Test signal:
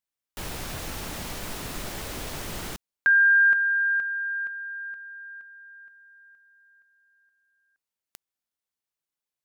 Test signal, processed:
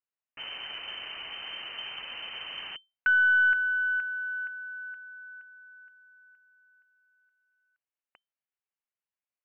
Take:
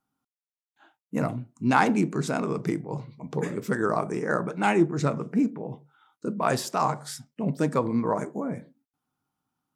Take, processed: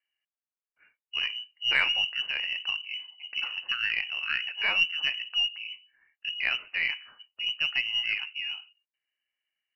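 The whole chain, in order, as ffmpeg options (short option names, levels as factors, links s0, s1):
-af "lowpass=f=2600:t=q:w=0.5098,lowpass=f=2600:t=q:w=0.6013,lowpass=f=2600:t=q:w=0.9,lowpass=f=2600:t=q:w=2.563,afreqshift=-3100,aeval=exprs='0.562*(cos(1*acos(clip(val(0)/0.562,-1,1)))-cos(1*PI/2))+0.0178*(cos(4*acos(clip(val(0)/0.562,-1,1)))-cos(4*PI/2))':c=same,volume=0.631"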